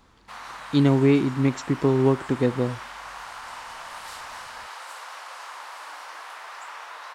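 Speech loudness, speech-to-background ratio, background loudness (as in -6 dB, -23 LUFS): -22.0 LUFS, 16.5 dB, -38.5 LUFS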